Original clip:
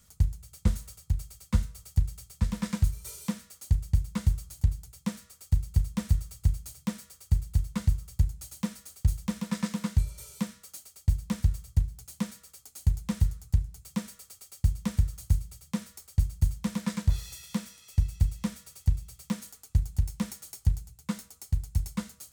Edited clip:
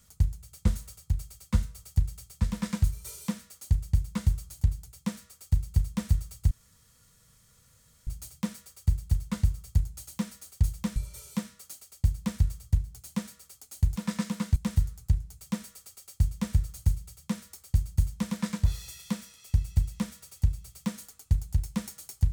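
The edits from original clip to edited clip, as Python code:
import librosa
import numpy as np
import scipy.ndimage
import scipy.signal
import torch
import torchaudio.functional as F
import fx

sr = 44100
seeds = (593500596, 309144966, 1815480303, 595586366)

y = fx.edit(x, sr, fx.insert_room_tone(at_s=6.51, length_s=1.56),
    fx.move(start_s=9.4, length_s=0.6, to_s=13.0), tone=tone)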